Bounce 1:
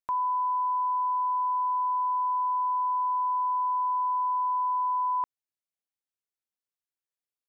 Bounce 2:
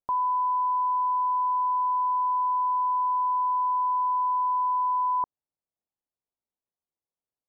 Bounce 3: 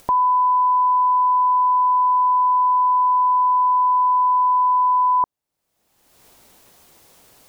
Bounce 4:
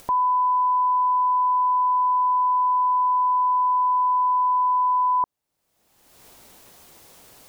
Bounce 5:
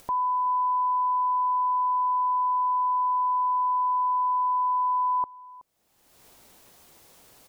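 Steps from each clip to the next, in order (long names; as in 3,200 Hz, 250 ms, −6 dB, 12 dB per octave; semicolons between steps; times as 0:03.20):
low-pass filter 1,000 Hz 24 dB per octave; level +5 dB
upward compression, threshold −33 dBFS; level +8.5 dB
brickwall limiter −19 dBFS, peak gain reduction 8 dB; level +2 dB
single-tap delay 373 ms −20.5 dB; level −5 dB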